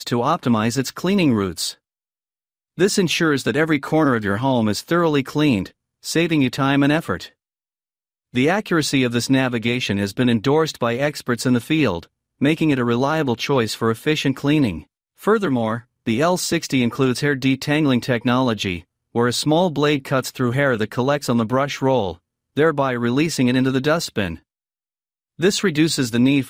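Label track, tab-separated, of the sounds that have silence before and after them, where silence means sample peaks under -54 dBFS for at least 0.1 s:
2.770000	5.720000	sound
6.030000	7.330000	sound
8.330000	12.070000	sound
12.400000	14.860000	sound
15.170000	15.850000	sound
16.060000	18.840000	sound
19.140000	22.190000	sound
22.560000	24.420000	sound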